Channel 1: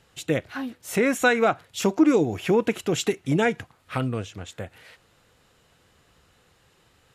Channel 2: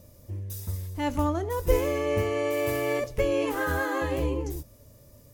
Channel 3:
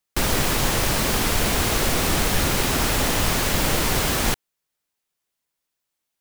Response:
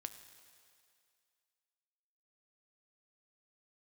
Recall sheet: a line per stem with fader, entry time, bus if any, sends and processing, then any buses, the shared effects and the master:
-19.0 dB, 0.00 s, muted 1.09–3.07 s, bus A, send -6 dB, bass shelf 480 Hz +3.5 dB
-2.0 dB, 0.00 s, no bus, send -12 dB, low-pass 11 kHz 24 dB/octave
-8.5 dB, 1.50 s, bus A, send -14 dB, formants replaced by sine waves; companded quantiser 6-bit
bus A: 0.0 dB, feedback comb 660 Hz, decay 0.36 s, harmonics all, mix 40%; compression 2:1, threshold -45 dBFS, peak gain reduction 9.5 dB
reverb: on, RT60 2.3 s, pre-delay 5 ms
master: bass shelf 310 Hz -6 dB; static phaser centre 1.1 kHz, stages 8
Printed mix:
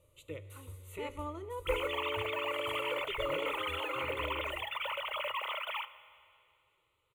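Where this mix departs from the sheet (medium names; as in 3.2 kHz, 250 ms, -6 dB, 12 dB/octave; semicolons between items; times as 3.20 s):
stem 2 -2.0 dB -> -11.5 dB; reverb return +8.0 dB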